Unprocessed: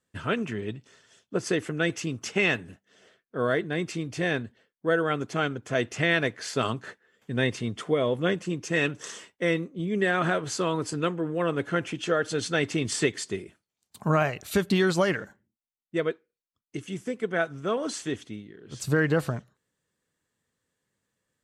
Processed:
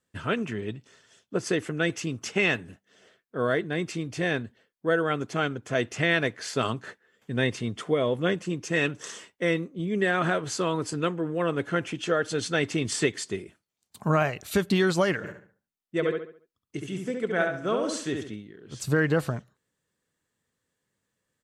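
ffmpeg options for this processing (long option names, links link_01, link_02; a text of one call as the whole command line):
ffmpeg -i in.wav -filter_complex "[0:a]asplit=3[link_01][link_02][link_03];[link_01]afade=type=out:start_time=15.23:duration=0.02[link_04];[link_02]asplit=2[link_05][link_06];[link_06]adelay=69,lowpass=frequency=3700:poles=1,volume=-4dB,asplit=2[link_07][link_08];[link_08]adelay=69,lowpass=frequency=3700:poles=1,volume=0.38,asplit=2[link_09][link_10];[link_10]adelay=69,lowpass=frequency=3700:poles=1,volume=0.38,asplit=2[link_11][link_12];[link_12]adelay=69,lowpass=frequency=3700:poles=1,volume=0.38,asplit=2[link_13][link_14];[link_14]adelay=69,lowpass=frequency=3700:poles=1,volume=0.38[link_15];[link_05][link_07][link_09][link_11][link_13][link_15]amix=inputs=6:normalize=0,afade=type=in:start_time=15.23:duration=0.02,afade=type=out:start_time=18.34:duration=0.02[link_16];[link_03]afade=type=in:start_time=18.34:duration=0.02[link_17];[link_04][link_16][link_17]amix=inputs=3:normalize=0" out.wav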